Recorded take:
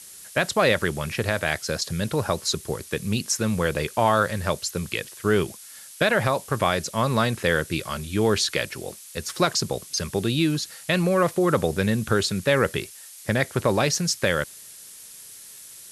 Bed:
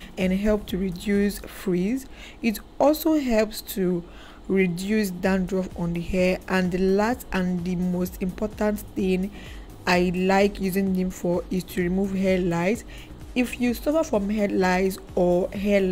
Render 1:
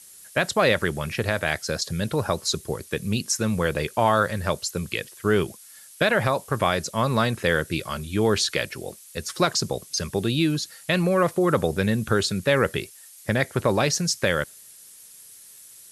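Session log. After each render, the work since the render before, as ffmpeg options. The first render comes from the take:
-af "afftdn=nr=6:nf=-44"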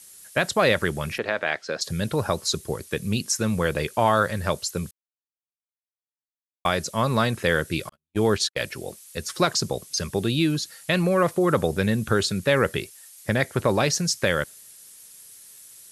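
-filter_complex "[0:a]asettb=1/sr,asplit=3[s0][s1][s2];[s0]atrim=end=1.184[s3];[s1]atrim=start=1.18:end=1.81,asetpts=PTS-STARTPTS,afade=t=in:d=0.004:c=qsin,afade=t=out:st=0.626:d=0.004:c=qsin,highpass=290,lowpass=3400[s4];[s2]atrim=start=1.806[s5];[s3][s4]acrossfade=d=0.004:c1=hsin:c2=qsin[s6];[s6][s5]acrossfade=d=0.004:c1=qsin:c2=hsin,asettb=1/sr,asplit=3[s7][s8][s9];[s7]atrim=end=7.894[s10];[s8]atrim=start=7.89:end=8.6,asetpts=PTS-STARTPTS,afade=t=in:d=0.004:c=qsin,afade=t=out:st=0.706:d=0.004:c=qsin,agate=range=0.00126:threshold=0.0562:ratio=16:release=100:detection=peak[s11];[s9]atrim=start=8.596[s12];[s10][s11]acrossfade=d=0.004:c1=hsin:c2=qsin[s13];[s13][s12]acrossfade=d=0.004:c1=qsin:c2=hsin,asplit=3[s14][s15][s16];[s14]atrim=end=4.91,asetpts=PTS-STARTPTS,afade=t=out:st=4.906:d=0.004:c=hsin[s17];[s15]atrim=start=4.91:end=6.65,asetpts=PTS-STARTPTS,volume=0[s18];[s16]atrim=start=6.65,asetpts=PTS-STARTPTS,afade=t=in:d=0.004:c=hsin[s19];[s17][s18][s19]concat=n=3:v=0:a=1"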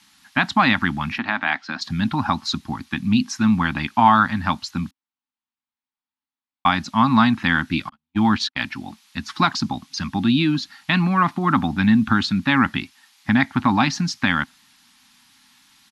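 -af "firequalizer=gain_entry='entry(140,0);entry(260,15);entry(450,-29);entry(800,10);entry(1500,5);entry(3900,3);entry(8400,-17)':delay=0.05:min_phase=1"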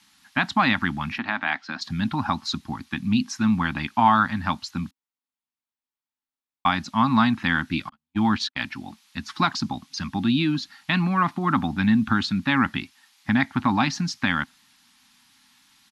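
-af "volume=0.668"

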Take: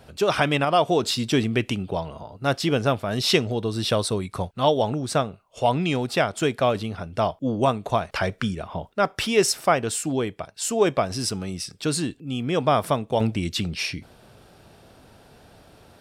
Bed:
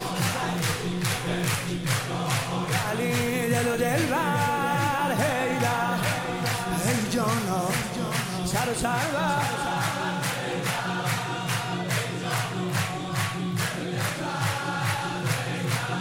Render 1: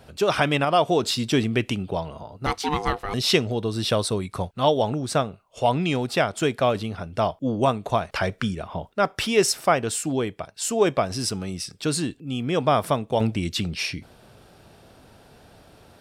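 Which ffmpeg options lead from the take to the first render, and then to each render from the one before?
-filter_complex "[0:a]asettb=1/sr,asplit=3[s0][s1][s2];[s0]atrim=end=2.464[s3];[s1]atrim=start=2.46:end=3.14,asetpts=PTS-STARTPTS,afade=t=in:d=0.004:c=qsin,afade=t=out:st=0.676:d=0.004:c=qsin,aeval=exprs='val(0)*sin(2*PI*600*n/s)':c=same[s4];[s2]atrim=start=3.136[s5];[s3][s4]acrossfade=d=0.004:c1=hsin:c2=qsin[s6];[s6][s5]acrossfade=d=0.004:c1=qsin:c2=hsin"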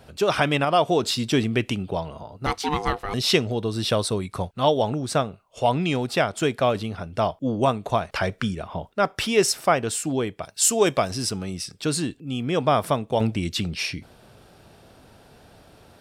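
-filter_complex "[0:a]asettb=1/sr,asplit=3[s0][s1][s2];[s0]atrim=end=10.424[s3];[s1]atrim=start=10.42:end=11.11,asetpts=PTS-STARTPTS,afade=t=in:d=0.004:c=qsin,afade=t=out:st=0.686:d=0.004:c=qsin,highshelf=f=3800:g=11[s4];[s2]atrim=start=11.106[s5];[s3][s4]acrossfade=d=0.004:c1=hsin:c2=qsin[s6];[s6][s5]acrossfade=d=0.004:c1=qsin:c2=hsin"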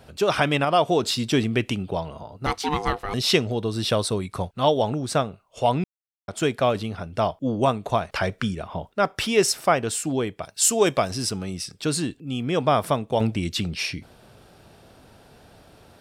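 -filter_complex "[0:a]asplit=3[s0][s1][s2];[s0]atrim=end=5.84,asetpts=PTS-STARTPTS,afade=t=out:st=5.836:d=0.004:c=hsin[s3];[s1]atrim=start=5.84:end=6.28,asetpts=PTS-STARTPTS,volume=0[s4];[s2]atrim=start=6.28,asetpts=PTS-STARTPTS,afade=t=in:d=0.004:c=hsin[s5];[s3][s4][s5]concat=n=3:v=0:a=1"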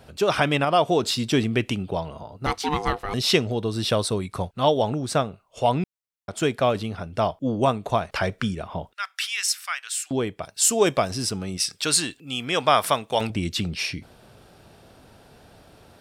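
-filter_complex "[0:a]asettb=1/sr,asplit=3[s0][s1][s2];[s0]atrim=end=8.934[s3];[s1]atrim=start=8.93:end=10.11,asetpts=PTS-STARTPTS,afade=t=in:d=0.004:c=qsin,afade=t=out:st=1.176:d=0.004:c=qsin,highpass=f=1500:w=0.5412,highpass=f=1500:w=1.3066[s4];[s2]atrim=start=10.106[s5];[s3][s4]acrossfade=d=0.004:c1=hsin:c2=qsin[s6];[s6][s5]acrossfade=d=0.004:c1=qsin:c2=hsin,asettb=1/sr,asplit=3[s7][s8][s9];[s7]atrim=end=11.574[s10];[s8]atrim=start=11.57:end=13.3,asetpts=PTS-STARTPTS,afade=t=in:d=0.004:c=qsin,afade=t=out:st=1.726:d=0.004:c=qsin,tiltshelf=f=640:g=-8.5[s11];[s9]atrim=start=13.296[s12];[s10][s11]acrossfade=d=0.004:c1=hsin:c2=qsin[s13];[s13][s12]acrossfade=d=0.004:c1=qsin:c2=hsin"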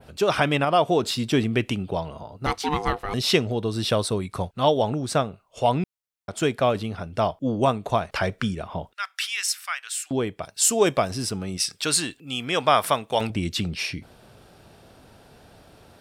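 -af "adynamicequalizer=threshold=0.01:dfrequency=5700:dqfactor=0.79:tfrequency=5700:tqfactor=0.79:attack=5:release=100:ratio=0.375:range=2:mode=cutabove:tftype=bell"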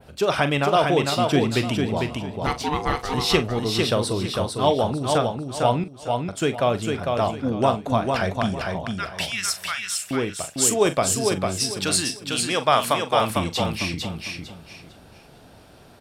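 -filter_complex "[0:a]asplit=2[s0][s1];[s1]adelay=42,volume=0.251[s2];[s0][s2]amix=inputs=2:normalize=0,aecho=1:1:451|902|1353|1804:0.631|0.164|0.0427|0.0111"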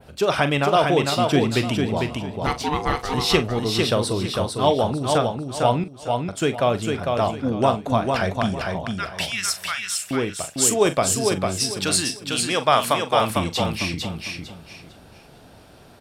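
-af "volume=1.12"

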